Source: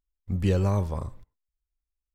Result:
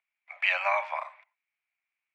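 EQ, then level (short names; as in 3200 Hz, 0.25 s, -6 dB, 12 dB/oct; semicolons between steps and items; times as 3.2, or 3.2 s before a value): steep high-pass 620 Hz 96 dB/oct; synth low-pass 2300 Hz, resonance Q 8.8; +6.5 dB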